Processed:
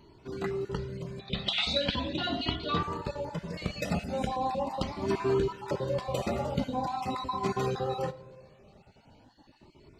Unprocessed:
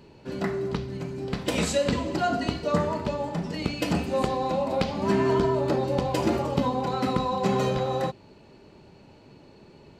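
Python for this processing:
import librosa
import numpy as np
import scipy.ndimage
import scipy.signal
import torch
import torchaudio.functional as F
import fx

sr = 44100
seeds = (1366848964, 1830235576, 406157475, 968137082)

y = fx.spec_dropout(x, sr, seeds[0], share_pct=23)
y = fx.lowpass_res(y, sr, hz=3600.0, q=6.8, at=(1.19, 2.83))
y = fx.notch(y, sr, hz=1700.0, q=6.7, at=(6.5, 7.3))
y = fx.rev_freeverb(y, sr, rt60_s=1.6, hf_ratio=0.3, predelay_ms=10, drr_db=16.5)
y = fx.comb_cascade(y, sr, direction='rising', hz=0.41)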